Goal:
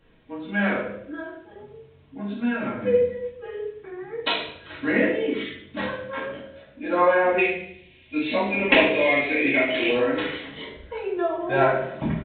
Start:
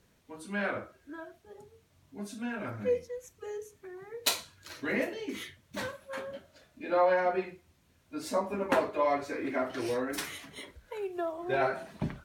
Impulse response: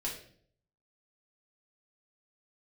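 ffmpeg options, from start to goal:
-filter_complex "[0:a]asettb=1/sr,asplit=3[s0][s1][s2];[s0]atrim=end=7.384[s3];[s1]atrim=start=7.38:end=9.89,asetpts=PTS-STARTPTS,afade=t=in:d=0.004:c=qsin,afade=t=out:st=2.506:d=0.004:c=qsin,highshelf=f=1800:t=q:w=3:g=9[s4];[s2]atrim=start=9.886[s5];[s3][s4]acrossfade=d=0.004:c1=hsin:c2=qsin[s6];[s6][s5]acrossfade=d=0.004:c1=qsin:c2=hsin,aecho=1:1:74|148|222|296|370:0.224|0.107|0.0516|0.0248|0.0119[s7];[1:a]atrim=start_sample=2205[s8];[s7][s8]afir=irnorm=-1:irlink=0,aresample=8000,aresample=44100,volume=2.11"

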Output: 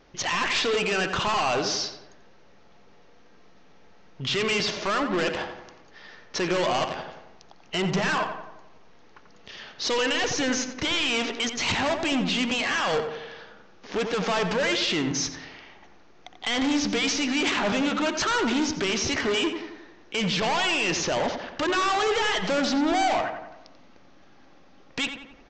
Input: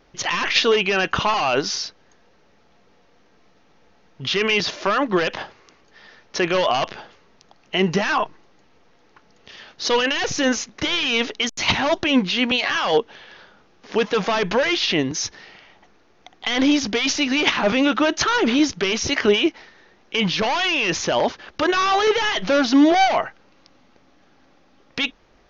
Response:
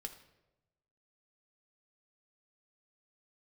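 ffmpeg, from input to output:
-filter_complex "[0:a]aresample=16000,asoftclip=type=tanh:threshold=0.075,aresample=44100,asplit=2[s0][s1];[s1]adelay=89,lowpass=f=2500:p=1,volume=0.447,asplit=2[s2][s3];[s3]adelay=89,lowpass=f=2500:p=1,volume=0.55,asplit=2[s4][s5];[s5]adelay=89,lowpass=f=2500:p=1,volume=0.55,asplit=2[s6][s7];[s7]adelay=89,lowpass=f=2500:p=1,volume=0.55,asplit=2[s8][s9];[s9]adelay=89,lowpass=f=2500:p=1,volume=0.55,asplit=2[s10][s11];[s11]adelay=89,lowpass=f=2500:p=1,volume=0.55,asplit=2[s12][s13];[s13]adelay=89,lowpass=f=2500:p=1,volume=0.55[s14];[s0][s2][s4][s6][s8][s10][s12][s14]amix=inputs=8:normalize=0"

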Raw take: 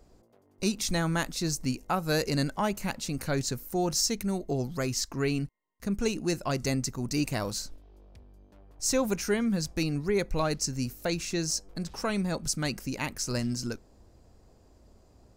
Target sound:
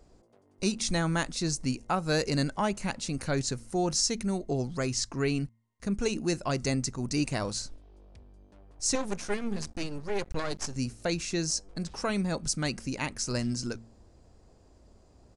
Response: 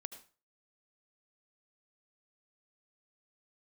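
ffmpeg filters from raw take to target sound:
-filter_complex "[0:a]bandreject=f=113.6:t=h:w=4,bandreject=f=227.2:t=h:w=4,asettb=1/sr,asplit=3[s0][s1][s2];[s0]atrim=end=8.954[s3];[s1]atrim=start=8.95:end=10.76,asetpts=PTS-STARTPTS,afade=t=in:d=0.004:c=qsin,afade=t=out:st=1.806:d=0.004:c=qsin,aeval=exprs='max(val(0),0)':c=same[s4];[s2]atrim=start=10.756[s5];[s3][s4]acrossfade=d=0.004:c1=hsin:c2=qsin[s6];[s6][s5]acrossfade=d=0.004:c1=qsin:c2=hsin,aresample=22050,aresample=44100"

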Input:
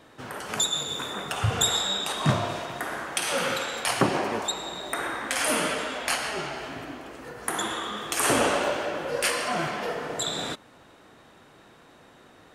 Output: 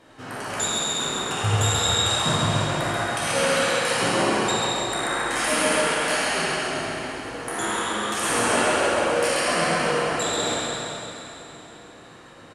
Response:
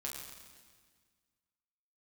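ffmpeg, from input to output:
-filter_complex "[0:a]bandreject=f=3500:w=15,alimiter=limit=0.168:level=0:latency=1:release=164,asoftclip=type=hard:threshold=0.106,aecho=1:1:134|268|402|536|670:0.668|0.287|0.124|0.0531|0.0228[s0];[1:a]atrim=start_sample=2205,asetrate=22050,aresample=44100[s1];[s0][s1]afir=irnorm=-1:irlink=0"

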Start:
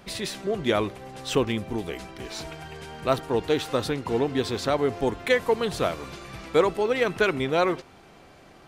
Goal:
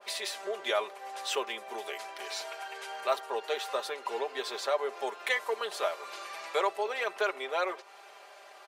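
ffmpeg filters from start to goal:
-filter_complex "[0:a]highpass=f=540:w=0.5412,highpass=f=540:w=1.3066,aecho=1:1:5:0.65,asplit=2[s0][s1];[s1]acompressor=threshold=0.0141:ratio=6,volume=1.12[s2];[s0][s2]amix=inputs=2:normalize=0,adynamicequalizer=threshold=0.0178:dfrequency=1500:dqfactor=0.7:tfrequency=1500:tqfactor=0.7:attack=5:release=100:ratio=0.375:range=2.5:mode=cutabove:tftype=highshelf,volume=0.501"

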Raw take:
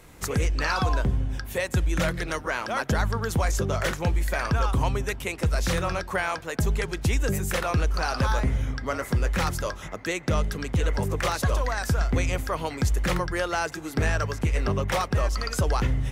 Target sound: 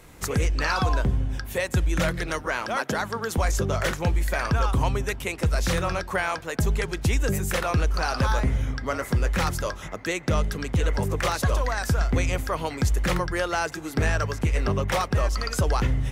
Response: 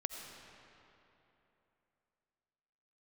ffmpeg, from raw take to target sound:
-filter_complex "[0:a]asettb=1/sr,asplit=3[s0][s1][s2];[s0]atrim=end=2.764[s3];[s1]atrim=start=2.76:end=3.38,asetpts=PTS-STARTPTS,afade=t=in:d=0.004:c=qsin,afade=t=out:st=0.616:d=0.004:c=qsin,highpass=200[s4];[s2]atrim=start=3.376[s5];[s3][s4]acrossfade=d=0.004:c1=hsin:c2=qsin[s6];[s6][s5]acrossfade=d=0.004:c1=qsin:c2=hsin,volume=1.12"

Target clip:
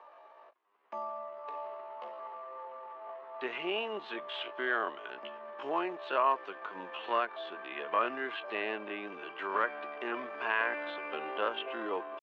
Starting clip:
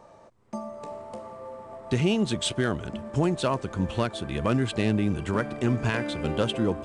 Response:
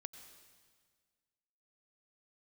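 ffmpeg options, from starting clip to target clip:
-filter_complex "[0:a]acrossover=split=2500[s0][s1];[s1]acompressor=threshold=0.00631:ratio=4:attack=1:release=60[s2];[s0][s2]amix=inputs=2:normalize=0,atempo=0.56,highpass=f=440:w=0.5412,highpass=f=440:w=1.3066,equalizer=f=510:t=q:w=4:g=-7,equalizer=f=1100:t=q:w=4:g=6,equalizer=f=1700:t=q:w=4:g=4,equalizer=f=2800:t=q:w=4:g=5,lowpass=f=3500:w=0.5412,lowpass=f=3500:w=1.3066,volume=0.75"

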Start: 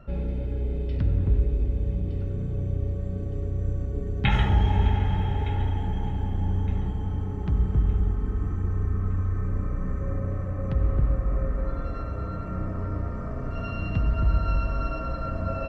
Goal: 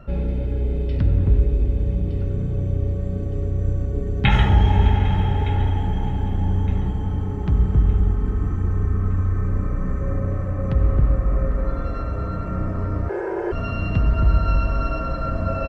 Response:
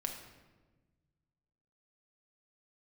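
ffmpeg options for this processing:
-filter_complex "[0:a]asettb=1/sr,asplit=3[s0][s1][s2];[s0]atrim=end=13.094[s3];[s1]atrim=start=13.09:end=13.52,asetpts=PTS-STARTPTS,afade=t=in:d=0.004:c=qsin,afade=t=out:st=0.426:d=0.004:c=qsin,afreqshift=320[s4];[s2]atrim=start=13.516[s5];[s3][s4]acrossfade=d=0.004:c1=hsin:c2=qsin[s6];[s6][s5]acrossfade=d=0.004:c1=qsin:c2=hsin,aecho=1:1:803:0.1,volume=1.88"

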